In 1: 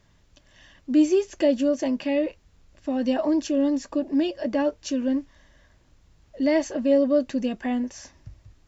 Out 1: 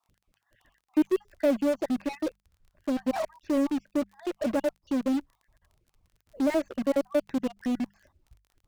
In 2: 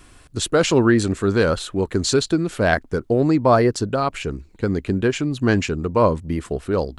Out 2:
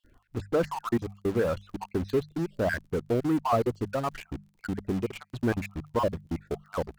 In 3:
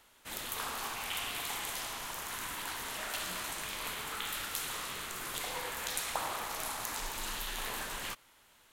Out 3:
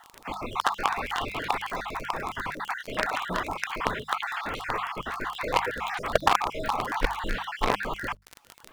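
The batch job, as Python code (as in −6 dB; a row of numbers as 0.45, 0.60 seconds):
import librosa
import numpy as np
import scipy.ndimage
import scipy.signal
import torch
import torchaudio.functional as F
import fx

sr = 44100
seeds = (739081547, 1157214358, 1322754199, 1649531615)

p1 = fx.spec_dropout(x, sr, seeds[0], share_pct=47)
p2 = fx.dereverb_blind(p1, sr, rt60_s=0.94)
p3 = scipy.signal.sosfilt(scipy.signal.butter(2, 1600.0, 'lowpass', fs=sr, output='sos'), p2)
p4 = fx.fuzz(p3, sr, gain_db=42.0, gate_db=-36.0)
p5 = p3 + F.gain(torch.from_numpy(p4), -12.0).numpy()
p6 = fx.quant_companded(p5, sr, bits=8)
p7 = fx.hum_notches(p6, sr, base_hz=50, count=4)
p8 = fx.dmg_crackle(p7, sr, seeds[1], per_s=26.0, level_db=-42.0)
y = p8 * 10.0 ** (-30 / 20.0) / np.sqrt(np.mean(np.square(p8)))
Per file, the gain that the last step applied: −5.5, −9.5, +16.5 decibels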